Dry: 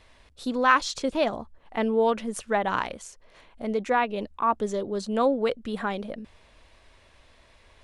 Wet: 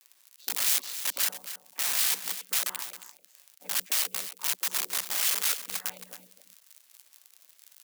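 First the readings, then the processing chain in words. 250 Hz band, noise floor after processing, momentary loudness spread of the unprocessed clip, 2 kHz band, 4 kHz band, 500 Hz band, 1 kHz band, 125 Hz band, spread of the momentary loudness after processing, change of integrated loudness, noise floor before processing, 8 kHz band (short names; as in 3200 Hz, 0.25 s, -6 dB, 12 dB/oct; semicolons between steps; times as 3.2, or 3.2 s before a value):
-27.5 dB, -64 dBFS, 13 LU, -6.0 dB, +6.5 dB, -25.5 dB, -17.5 dB, under -15 dB, 15 LU, -1.0 dB, -58 dBFS, +14.0 dB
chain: chord vocoder minor triad, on B2; dynamic EQ 470 Hz, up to +7 dB, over -40 dBFS, Q 3.5; bit-crush 10-bit; HPF 150 Hz 12 dB/oct; crackle 45/s -37 dBFS; wrapped overs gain 21.5 dB; differentiator; on a send: echo 0.271 s -12 dB; on the sum: gain +4.5 dB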